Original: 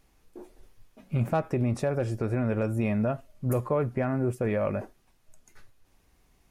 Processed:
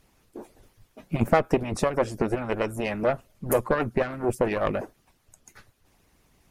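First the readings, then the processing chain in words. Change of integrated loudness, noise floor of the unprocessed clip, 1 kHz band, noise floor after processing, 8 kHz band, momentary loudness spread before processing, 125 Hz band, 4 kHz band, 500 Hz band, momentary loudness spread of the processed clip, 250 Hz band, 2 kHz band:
+2.0 dB, -65 dBFS, +6.5 dB, -67 dBFS, +9.5 dB, 4 LU, -4.0 dB, n/a, +4.0 dB, 11 LU, 0.0 dB, +7.0 dB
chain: added harmonics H 2 -7 dB, 8 -33 dB, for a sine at -15.5 dBFS; harmonic-percussive split harmonic -16 dB; gain +8.5 dB

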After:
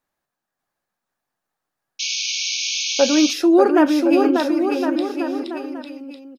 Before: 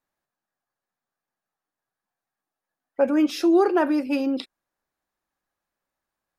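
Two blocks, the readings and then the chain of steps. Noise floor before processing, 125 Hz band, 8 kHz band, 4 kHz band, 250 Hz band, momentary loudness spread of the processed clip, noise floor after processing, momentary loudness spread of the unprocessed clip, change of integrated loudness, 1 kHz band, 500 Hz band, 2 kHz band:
under -85 dBFS, n/a, +23.0 dB, +18.0 dB, +6.5 dB, 15 LU, -83 dBFS, 14 LU, +3.5 dB, +6.0 dB, +6.0 dB, +9.0 dB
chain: bouncing-ball echo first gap 0.59 s, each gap 0.8×, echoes 5; painted sound noise, 1.99–3.34, 2200–6700 Hz -28 dBFS; gain +4 dB

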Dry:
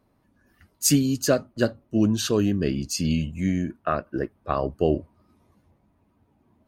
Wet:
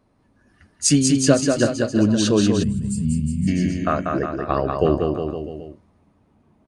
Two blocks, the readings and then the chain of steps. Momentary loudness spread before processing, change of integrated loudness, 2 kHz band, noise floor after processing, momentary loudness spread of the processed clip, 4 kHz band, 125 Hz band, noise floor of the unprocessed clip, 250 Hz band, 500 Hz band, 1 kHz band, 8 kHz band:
7 LU, +4.5 dB, +4.5 dB, -61 dBFS, 8 LU, +4.0 dB, +5.0 dB, -67 dBFS, +5.0 dB, +5.0 dB, +5.0 dB, +4.5 dB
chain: downsampling 22050 Hz; bouncing-ball echo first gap 0.19 s, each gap 0.9×, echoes 5; spectral gain 2.63–3.48, 240–7100 Hz -21 dB; gain +3 dB

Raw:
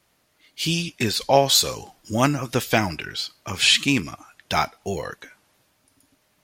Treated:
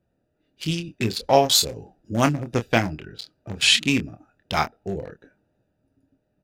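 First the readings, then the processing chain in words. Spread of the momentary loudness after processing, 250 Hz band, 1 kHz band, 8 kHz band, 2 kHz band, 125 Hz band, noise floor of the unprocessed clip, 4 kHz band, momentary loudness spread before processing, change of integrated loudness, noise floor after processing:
21 LU, 0.0 dB, -0.5 dB, -1.5 dB, -1.0 dB, 0.0 dB, -67 dBFS, -1.0 dB, 14 LU, -0.5 dB, -73 dBFS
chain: Wiener smoothing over 41 samples; doubler 26 ms -8.5 dB

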